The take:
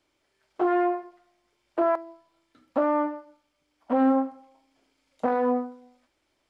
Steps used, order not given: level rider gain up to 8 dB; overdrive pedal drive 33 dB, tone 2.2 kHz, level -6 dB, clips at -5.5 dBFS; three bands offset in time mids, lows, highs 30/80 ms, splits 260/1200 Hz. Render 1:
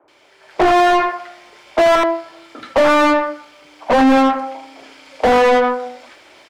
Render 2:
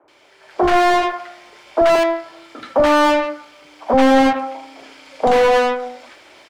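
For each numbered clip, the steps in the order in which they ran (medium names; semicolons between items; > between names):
level rider > three bands offset in time > overdrive pedal; level rider > overdrive pedal > three bands offset in time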